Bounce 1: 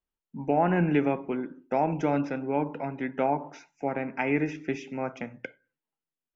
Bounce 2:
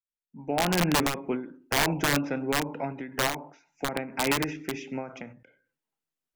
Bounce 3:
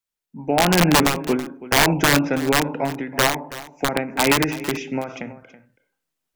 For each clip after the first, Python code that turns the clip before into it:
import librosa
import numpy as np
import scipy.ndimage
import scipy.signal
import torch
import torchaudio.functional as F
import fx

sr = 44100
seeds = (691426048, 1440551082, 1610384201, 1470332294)

y1 = fx.fade_in_head(x, sr, length_s=1.03)
y1 = (np.mod(10.0 ** (18.5 / 20.0) * y1 + 1.0, 2.0) - 1.0) / 10.0 ** (18.5 / 20.0)
y1 = fx.end_taper(y1, sr, db_per_s=110.0)
y1 = y1 * 10.0 ** (2.0 / 20.0)
y2 = y1 + 10.0 ** (-16.5 / 20.0) * np.pad(y1, (int(327 * sr / 1000.0), 0))[:len(y1)]
y2 = y2 * 10.0 ** (8.5 / 20.0)